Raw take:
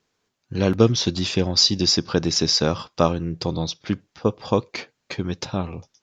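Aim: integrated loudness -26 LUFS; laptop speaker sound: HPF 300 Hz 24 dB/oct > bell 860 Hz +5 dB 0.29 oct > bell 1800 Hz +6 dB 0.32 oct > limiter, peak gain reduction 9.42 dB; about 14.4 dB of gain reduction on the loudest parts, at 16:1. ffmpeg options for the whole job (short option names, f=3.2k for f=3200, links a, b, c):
-af "acompressor=threshold=-24dB:ratio=16,highpass=f=300:w=0.5412,highpass=f=300:w=1.3066,equalizer=f=860:t=o:w=0.29:g=5,equalizer=f=1.8k:t=o:w=0.32:g=6,volume=9dB,alimiter=limit=-13.5dB:level=0:latency=1"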